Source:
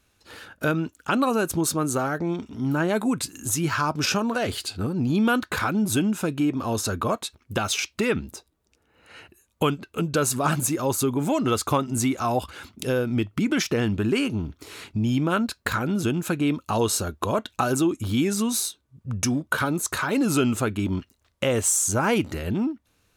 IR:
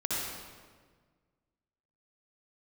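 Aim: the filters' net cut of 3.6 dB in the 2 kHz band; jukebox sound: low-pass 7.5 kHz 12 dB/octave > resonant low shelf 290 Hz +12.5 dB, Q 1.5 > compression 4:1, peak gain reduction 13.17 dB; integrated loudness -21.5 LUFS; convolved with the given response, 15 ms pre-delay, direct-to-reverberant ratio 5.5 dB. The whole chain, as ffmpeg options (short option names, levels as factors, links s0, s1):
-filter_complex "[0:a]equalizer=f=2000:t=o:g=-5,asplit=2[s0][s1];[1:a]atrim=start_sample=2205,adelay=15[s2];[s1][s2]afir=irnorm=-1:irlink=0,volume=0.237[s3];[s0][s3]amix=inputs=2:normalize=0,lowpass=7500,lowshelf=f=290:t=q:w=1.5:g=12.5,acompressor=threshold=0.112:ratio=4,volume=1.12"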